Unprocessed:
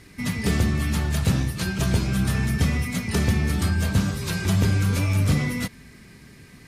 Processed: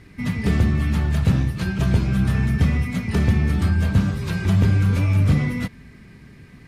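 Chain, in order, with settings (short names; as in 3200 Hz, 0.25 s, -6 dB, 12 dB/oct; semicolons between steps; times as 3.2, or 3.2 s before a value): tone controls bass +4 dB, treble -10 dB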